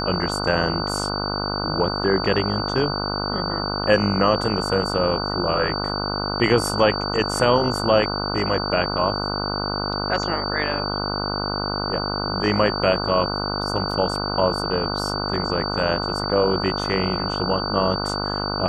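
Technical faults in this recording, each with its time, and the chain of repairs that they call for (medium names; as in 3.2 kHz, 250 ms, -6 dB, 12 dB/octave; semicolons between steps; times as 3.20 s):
buzz 50 Hz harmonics 30 -27 dBFS
whine 4.6 kHz -28 dBFS
13.91 s: dropout 3 ms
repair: band-stop 4.6 kHz, Q 30; de-hum 50 Hz, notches 30; interpolate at 13.91 s, 3 ms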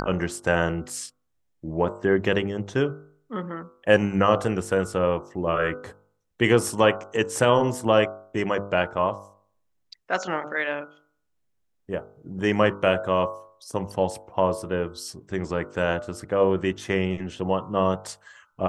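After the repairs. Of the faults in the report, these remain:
nothing left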